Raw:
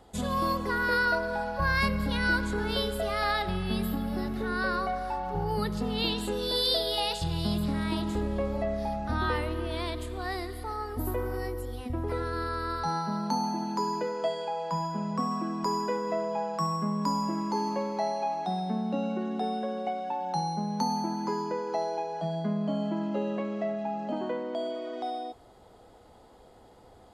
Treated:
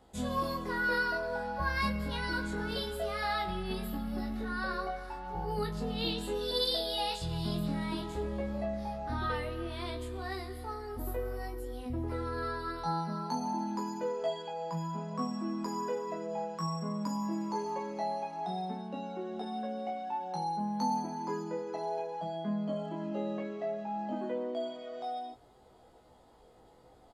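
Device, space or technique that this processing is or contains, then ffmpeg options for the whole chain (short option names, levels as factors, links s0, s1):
double-tracked vocal: -filter_complex "[0:a]asplit=2[s0][s1];[s1]adelay=24,volume=0.447[s2];[s0][s2]amix=inputs=2:normalize=0,flanger=delay=15.5:depth=2.3:speed=0.58,volume=0.708"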